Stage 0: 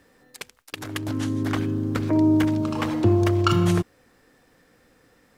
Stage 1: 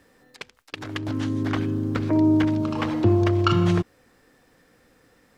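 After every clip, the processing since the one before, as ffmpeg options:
-filter_complex "[0:a]acrossover=split=5800[a][b];[b]acompressor=threshold=-60dB:ratio=4:attack=1:release=60[c];[a][c]amix=inputs=2:normalize=0"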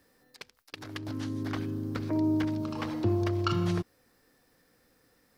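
-af "aexciter=amount=2.1:drive=3.1:freq=4.2k,volume=-8.5dB"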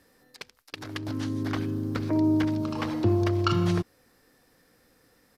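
-af "aresample=32000,aresample=44100,volume=4dB"

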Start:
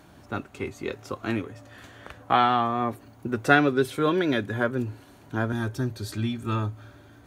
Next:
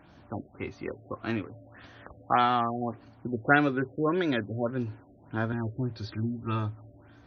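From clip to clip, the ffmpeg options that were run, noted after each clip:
-af "bandreject=f=410:w=12,afftfilt=real='re*lt(b*sr/1024,690*pow(6600/690,0.5+0.5*sin(2*PI*1.7*pts/sr)))':imag='im*lt(b*sr/1024,690*pow(6600/690,0.5+0.5*sin(2*PI*1.7*pts/sr)))':win_size=1024:overlap=0.75,volume=-3dB"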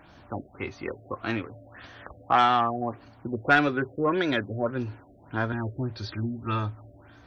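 -af "asoftclip=type=tanh:threshold=-14dB,equalizer=f=190:t=o:w=2.7:g=-5.5,volume=5.5dB"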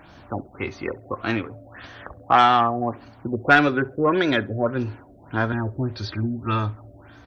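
-filter_complex "[0:a]asplit=2[a][b];[b]adelay=67,lowpass=f=1.5k:p=1,volume=-20dB,asplit=2[c][d];[d]adelay=67,lowpass=f=1.5k:p=1,volume=0.33,asplit=2[e][f];[f]adelay=67,lowpass=f=1.5k:p=1,volume=0.33[g];[a][c][e][g]amix=inputs=4:normalize=0,volume=5dB"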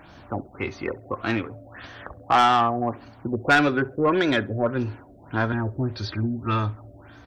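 -af "asoftclip=type=tanh:threshold=-10.5dB"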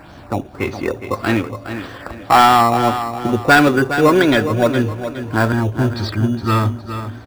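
-filter_complex "[0:a]aecho=1:1:414|828|1242|1656:0.316|0.111|0.0387|0.0136,asplit=2[a][b];[b]acrusher=samples=14:mix=1:aa=0.000001,volume=-9.5dB[c];[a][c]amix=inputs=2:normalize=0,volume=6dB"

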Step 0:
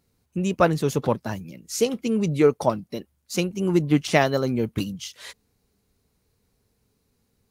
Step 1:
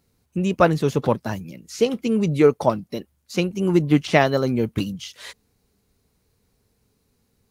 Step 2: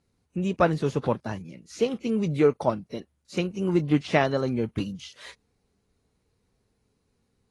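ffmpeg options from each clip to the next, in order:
-filter_complex "[0:a]acrossover=split=4500[a][b];[b]acompressor=threshold=-43dB:ratio=4:attack=1:release=60[c];[a][c]amix=inputs=2:normalize=0,volume=2.5dB"
-af "highshelf=f=4.4k:g=-5,volume=-5dB" -ar 24000 -c:a aac -b:a 32k

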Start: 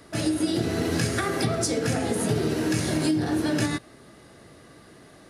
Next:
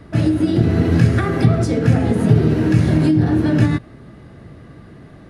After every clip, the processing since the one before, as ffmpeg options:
-af "bass=f=250:g=12,treble=f=4k:g=-14,volume=4dB"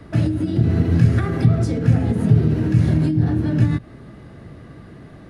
-filter_complex "[0:a]acrossover=split=210[a][b];[b]acompressor=threshold=-25dB:ratio=6[c];[a][c]amix=inputs=2:normalize=0"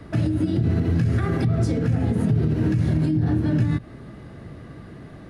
-af "alimiter=limit=-13dB:level=0:latency=1:release=87"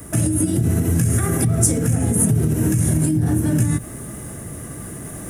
-af "areverse,acompressor=mode=upward:threshold=-29dB:ratio=2.5,areverse,aexciter=amount=15.5:drive=9:freq=6.9k,volume=2.5dB"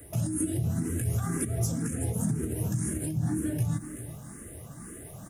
-filter_complex "[0:a]aecho=1:1:382:0.237,asplit=2[a][b];[b]afreqshift=2[c];[a][c]amix=inputs=2:normalize=1,volume=-8.5dB"

